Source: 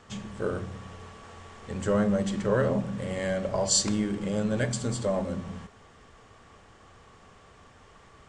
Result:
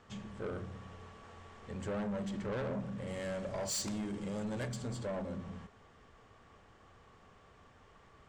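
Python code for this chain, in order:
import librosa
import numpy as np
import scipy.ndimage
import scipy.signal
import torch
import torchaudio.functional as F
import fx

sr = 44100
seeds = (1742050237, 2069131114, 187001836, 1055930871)

y = fx.high_shelf(x, sr, hz=6300.0, db=fx.steps((0.0, -9.0), (3.06, 3.0), (4.67, -10.0)))
y = 10.0 ** (-27.0 / 20.0) * np.tanh(y / 10.0 ** (-27.0 / 20.0))
y = F.gain(torch.from_numpy(y), -6.5).numpy()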